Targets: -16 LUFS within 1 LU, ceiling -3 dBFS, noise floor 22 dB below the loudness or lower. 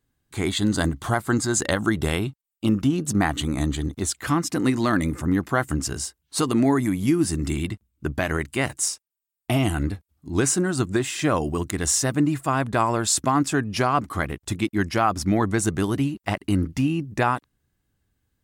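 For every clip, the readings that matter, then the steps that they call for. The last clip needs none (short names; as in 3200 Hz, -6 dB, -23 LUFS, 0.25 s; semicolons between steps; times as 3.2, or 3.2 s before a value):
loudness -24.0 LUFS; peak -8.5 dBFS; loudness target -16.0 LUFS
-> gain +8 dB; limiter -3 dBFS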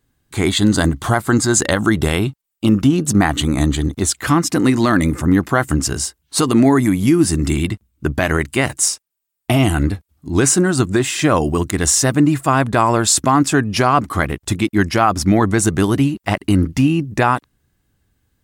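loudness -16.5 LUFS; peak -3.0 dBFS; noise floor -76 dBFS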